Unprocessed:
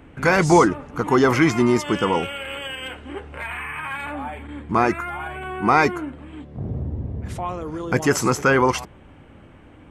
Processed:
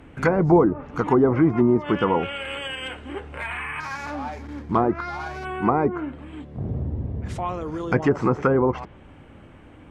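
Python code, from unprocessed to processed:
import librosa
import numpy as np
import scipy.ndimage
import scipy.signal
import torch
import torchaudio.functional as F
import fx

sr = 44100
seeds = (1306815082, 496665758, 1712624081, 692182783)

y = fx.median_filter(x, sr, points=15, at=(3.8, 5.45))
y = fx.env_lowpass_down(y, sr, base_hz=640.0, full_db=-13.0)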